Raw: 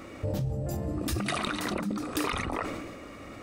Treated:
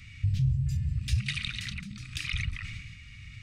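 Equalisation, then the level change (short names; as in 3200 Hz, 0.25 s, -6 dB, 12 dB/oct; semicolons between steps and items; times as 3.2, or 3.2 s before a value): elliptic band-stop 130–2300 Hz, stop band 70 dB; tape spacing loss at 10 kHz 25 dB; high shelf 3900 Hz +9 dB; +7.0 dB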